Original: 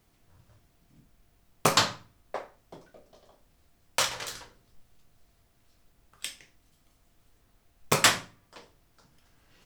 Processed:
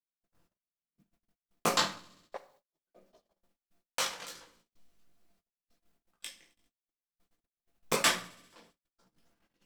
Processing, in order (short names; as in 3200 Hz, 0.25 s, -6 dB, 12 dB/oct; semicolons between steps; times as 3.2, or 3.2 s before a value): chorus voices 4, 1.2 Hz, delay 19 ms, depth 3 ms; 2.37–2.87 pre-emphasis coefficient 0.8; thinning echo 66 ms, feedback 74%, high-pass 680 Hz, level -23 dB; shoebox room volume 2300 m³, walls furnished, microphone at 0.8 m; in parallel at -5.5 dB: crossover distortion -39 dBFS; on the sum: gate -57 dBFS, range -35 dB; resonant low shelf 150 Hz -9 dB, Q 1.5; gain -6 dB